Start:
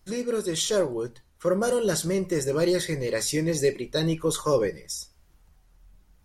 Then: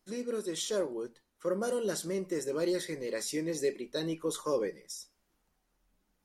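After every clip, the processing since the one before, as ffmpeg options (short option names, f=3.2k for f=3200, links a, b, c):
-af "lowshelf=f=160:t=q:w=1.5:g=-12,volume=-9dB"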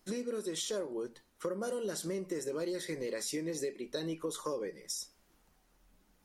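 -af "acompressor=threshold=-42dB:ratio=6,volume=7.5dB"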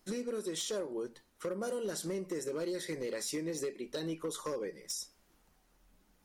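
-af "volume=30.5dB,asoftclip=hard,volume=-30.5dB"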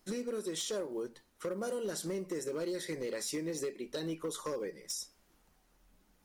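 -af "acrusher=bits=9:mode=log:mix=0:aa=0.000001"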